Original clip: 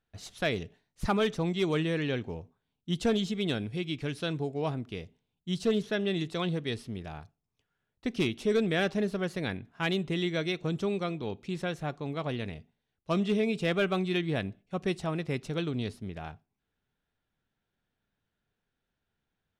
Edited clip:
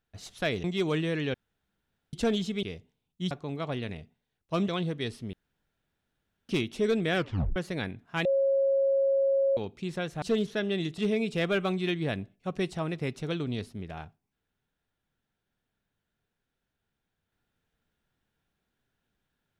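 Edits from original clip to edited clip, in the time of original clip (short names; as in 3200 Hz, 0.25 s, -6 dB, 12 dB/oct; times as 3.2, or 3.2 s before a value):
0.64–1.46 cut
2.16–2.95 room tone
3.45–4.9 cut
5.58–6.34 swap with 11.88–13.25
6.99–8.15 room tone
8.81 tape stop 0.41 s
9.91–11.23 bleep 546 Hz -21.5 dBFS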